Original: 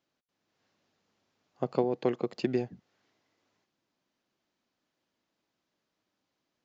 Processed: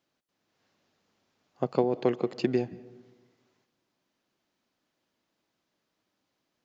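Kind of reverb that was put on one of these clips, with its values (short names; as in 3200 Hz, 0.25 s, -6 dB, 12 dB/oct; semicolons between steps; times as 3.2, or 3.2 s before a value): digital reverb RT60 1.3 s, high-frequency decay 0.35×, pre-delay 0.12 s, DRR 19.5 dB; gain +2.5 dB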